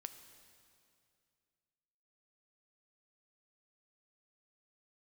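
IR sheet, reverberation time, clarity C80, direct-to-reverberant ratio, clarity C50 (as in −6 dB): 2.4 s, 10.5 dB, 8.5 dB, 10.0 dB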